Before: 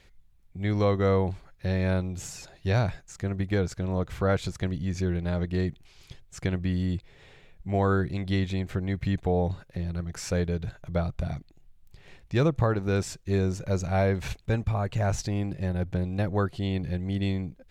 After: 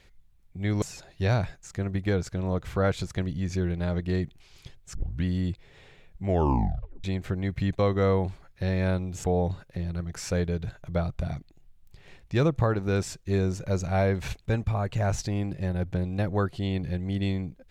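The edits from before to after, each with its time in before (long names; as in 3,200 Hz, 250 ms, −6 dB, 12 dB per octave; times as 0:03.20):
0:00.82–0:02.27: move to 0:09.24
0:06.40: tape start 0.29 s
0:07.72: tape stop 0.77 s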